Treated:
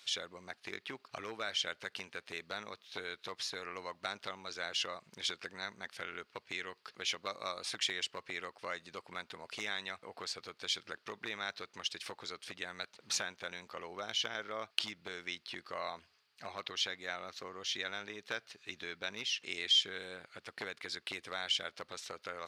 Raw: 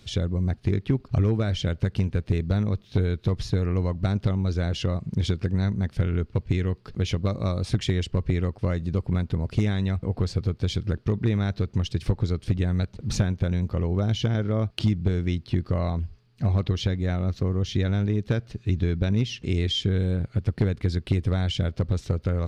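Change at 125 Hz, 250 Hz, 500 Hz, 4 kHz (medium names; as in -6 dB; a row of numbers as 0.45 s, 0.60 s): -39.0 dB, -26.5 dB, -14.5 dB, 0.0 dB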